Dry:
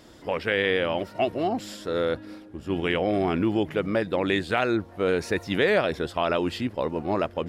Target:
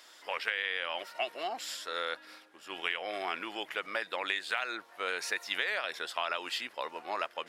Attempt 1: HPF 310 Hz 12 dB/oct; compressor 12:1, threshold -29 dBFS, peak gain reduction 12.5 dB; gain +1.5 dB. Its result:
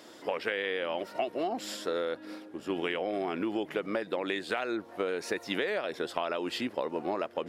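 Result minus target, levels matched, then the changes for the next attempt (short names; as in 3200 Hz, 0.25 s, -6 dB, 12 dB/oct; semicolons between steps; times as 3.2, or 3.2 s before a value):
250 Hz band +13.5 dB
change: HPF 1200 Hz 12 dB/oct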